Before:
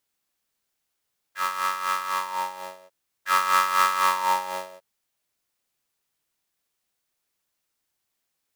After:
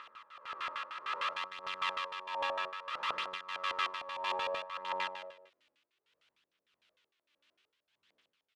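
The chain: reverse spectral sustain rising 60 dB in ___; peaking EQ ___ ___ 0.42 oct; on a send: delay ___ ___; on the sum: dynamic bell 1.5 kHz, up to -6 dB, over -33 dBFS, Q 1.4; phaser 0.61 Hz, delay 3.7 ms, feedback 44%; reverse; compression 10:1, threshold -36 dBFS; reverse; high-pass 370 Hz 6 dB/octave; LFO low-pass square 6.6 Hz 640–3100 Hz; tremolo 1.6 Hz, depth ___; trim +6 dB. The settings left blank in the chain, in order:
2.47 s, 740 Hz, -12.5 dB, 701 ms, -14 dB, 67%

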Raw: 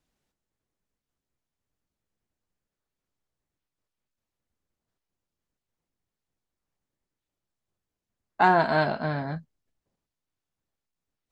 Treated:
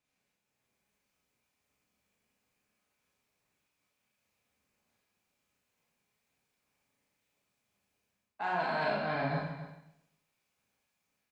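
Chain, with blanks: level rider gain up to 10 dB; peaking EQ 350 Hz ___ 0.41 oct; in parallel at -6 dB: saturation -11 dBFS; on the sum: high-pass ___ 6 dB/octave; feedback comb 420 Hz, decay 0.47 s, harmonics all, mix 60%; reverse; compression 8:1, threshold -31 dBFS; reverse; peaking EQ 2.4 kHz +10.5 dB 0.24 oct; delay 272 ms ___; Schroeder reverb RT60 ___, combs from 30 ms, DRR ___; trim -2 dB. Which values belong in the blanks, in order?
-6 dB, 180 Hz, -13.5 dB, 0.75 s, -2.5 dB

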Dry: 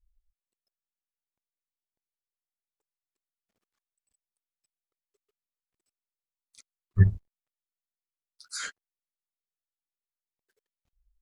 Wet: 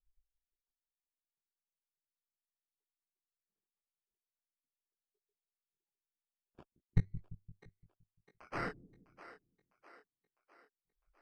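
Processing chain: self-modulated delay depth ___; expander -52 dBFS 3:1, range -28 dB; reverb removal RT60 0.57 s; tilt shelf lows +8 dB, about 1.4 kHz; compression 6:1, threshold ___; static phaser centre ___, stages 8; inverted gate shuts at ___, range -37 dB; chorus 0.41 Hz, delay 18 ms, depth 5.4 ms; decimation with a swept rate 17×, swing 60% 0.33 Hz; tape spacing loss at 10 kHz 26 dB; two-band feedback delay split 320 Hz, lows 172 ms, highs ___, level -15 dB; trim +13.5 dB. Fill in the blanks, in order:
0.34 ms, -16 dBFS, 390 Hz, -24 dBFS, 654 ms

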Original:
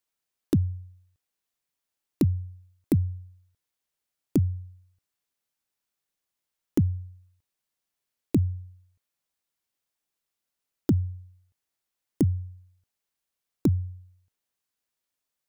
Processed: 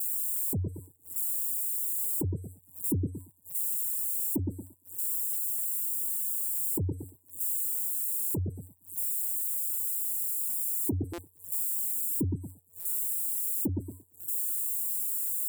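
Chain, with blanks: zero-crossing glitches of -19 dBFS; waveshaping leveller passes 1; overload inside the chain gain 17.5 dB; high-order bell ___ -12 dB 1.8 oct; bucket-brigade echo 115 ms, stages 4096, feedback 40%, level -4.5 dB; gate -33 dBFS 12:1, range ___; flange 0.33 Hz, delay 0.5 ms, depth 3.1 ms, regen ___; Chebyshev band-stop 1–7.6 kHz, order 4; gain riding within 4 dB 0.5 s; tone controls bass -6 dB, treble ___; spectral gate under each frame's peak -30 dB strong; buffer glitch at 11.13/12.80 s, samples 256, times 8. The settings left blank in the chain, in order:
930 Hz, -21 dB, -33%, -4 dB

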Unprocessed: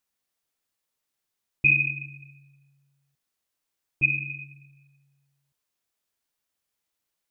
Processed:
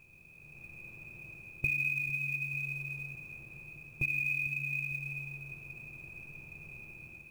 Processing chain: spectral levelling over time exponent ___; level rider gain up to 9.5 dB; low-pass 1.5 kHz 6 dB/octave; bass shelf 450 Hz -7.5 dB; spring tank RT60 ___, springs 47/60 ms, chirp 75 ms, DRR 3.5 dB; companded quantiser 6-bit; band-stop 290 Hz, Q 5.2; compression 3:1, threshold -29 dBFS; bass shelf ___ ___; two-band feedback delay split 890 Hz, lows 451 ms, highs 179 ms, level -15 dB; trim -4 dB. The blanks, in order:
0.4, 2.5 s, 93 Hz, +10 dB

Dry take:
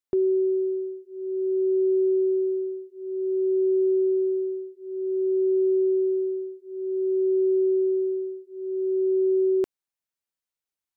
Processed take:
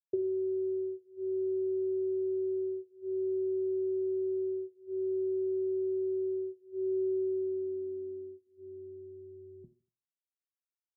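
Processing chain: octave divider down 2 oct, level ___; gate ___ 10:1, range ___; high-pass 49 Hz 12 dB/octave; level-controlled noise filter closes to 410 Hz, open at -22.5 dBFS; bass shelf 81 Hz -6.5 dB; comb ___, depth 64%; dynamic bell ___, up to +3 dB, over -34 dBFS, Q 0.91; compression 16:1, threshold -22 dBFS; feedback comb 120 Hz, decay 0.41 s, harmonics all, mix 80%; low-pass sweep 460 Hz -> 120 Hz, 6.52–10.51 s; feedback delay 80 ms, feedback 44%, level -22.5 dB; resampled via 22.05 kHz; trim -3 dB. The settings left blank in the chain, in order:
-3 dB, -34 dBFS, -11 dB, 5.2 ms, 170 Hz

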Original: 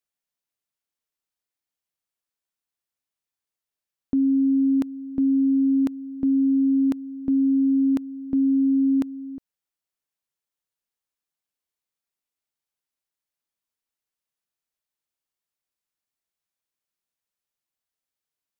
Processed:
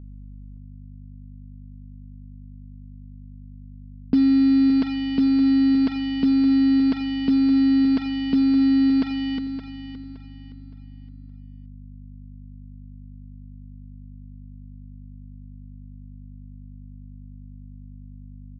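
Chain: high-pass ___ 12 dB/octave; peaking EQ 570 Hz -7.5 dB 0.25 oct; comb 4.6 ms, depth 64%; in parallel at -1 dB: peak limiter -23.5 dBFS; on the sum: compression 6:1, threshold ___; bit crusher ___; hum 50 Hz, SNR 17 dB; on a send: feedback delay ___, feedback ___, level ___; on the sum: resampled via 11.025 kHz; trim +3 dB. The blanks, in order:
94 Hz, -18 dBFS, 6-bit, 568 ms, 33%, -11 dB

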